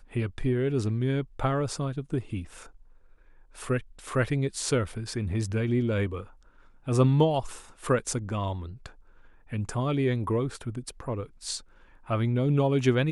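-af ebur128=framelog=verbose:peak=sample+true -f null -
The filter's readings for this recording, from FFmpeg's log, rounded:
Integrated loudness:
  I:         -28.4 LUFS
  Threshold: -39.3 LUFS
Loudness range:
  LRA:         4.4 LU
  Threshold: -49.7 LUFS
  LRA low:   -32.0 LUFS
  LRA high:  -27.6 LUFS
Sample peak:
  Peak:      -10.6 dBFS
True peak:
  Peak:      -10.6 dBFS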